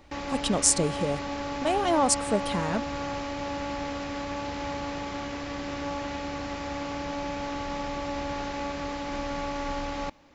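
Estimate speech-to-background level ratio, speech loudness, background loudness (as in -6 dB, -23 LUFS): 6.5 dB, -26.5 LUFS, -33.0 LUFS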